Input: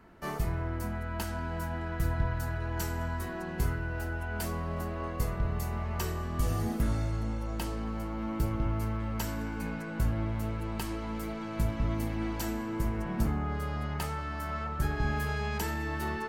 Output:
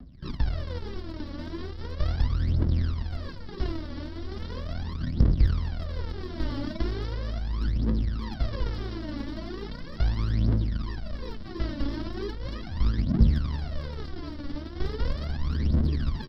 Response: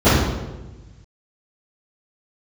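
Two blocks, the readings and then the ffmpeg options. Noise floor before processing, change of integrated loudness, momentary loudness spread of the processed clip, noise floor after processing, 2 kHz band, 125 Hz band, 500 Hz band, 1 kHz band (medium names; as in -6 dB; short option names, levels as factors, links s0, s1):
-37 dBFS, +3.0 dB, 12 LU, -38 dBFS, -6.0 dB, +4.5 dB, -1.0 dB, -6.5 dB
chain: -filter_complex "[0:a]aresample=11025,acrusher=samples=21:mix=1:aa=0.000001:lfo=1:lforange=12.6:lforate=3,aresample=44100,equalizer=f=250:t=o:w=0.33:g=5,equalizer=f=800:t=o:w=0.33:g=-6,equalizer=f=2500:t=o:w=0.33:g=-9,aphaser=in_gain=1:out_gain=1:delay=3.6:decay=0.79:speed=0.38:type=triangular,equalizer=f=1100:w=0.4:g=-3.5,acrossover=split=230[s0][s1];[s1]acompressor=threshold=0.0355:ratio=6[s2];[s0][s2]amix=inputs=2:normalize=0,volume=0.841"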